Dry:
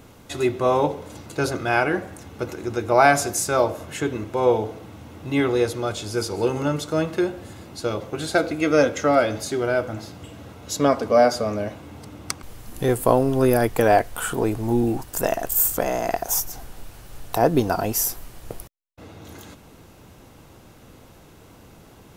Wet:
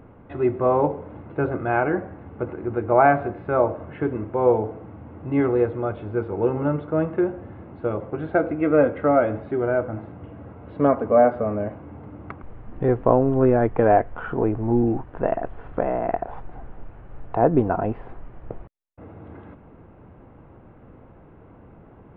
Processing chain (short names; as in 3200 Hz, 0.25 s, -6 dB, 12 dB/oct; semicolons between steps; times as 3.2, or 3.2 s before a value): Gaussian blur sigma 4.9 samples; gain +1 dB